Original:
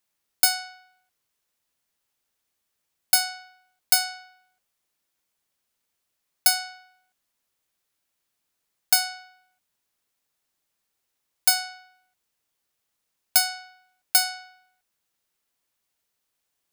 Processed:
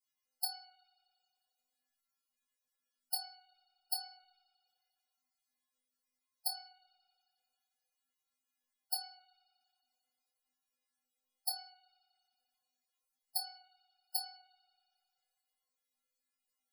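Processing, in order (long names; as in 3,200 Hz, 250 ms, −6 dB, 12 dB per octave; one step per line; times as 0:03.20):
stiff-string resonator 250 Hz, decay 0.67 s, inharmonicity 0.008
spring reverb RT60 2.4 s, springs 34 ms, chirp 55 ms, DRR 13 dB
gate on every frequency bin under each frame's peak −15 dB strong
level +7 dB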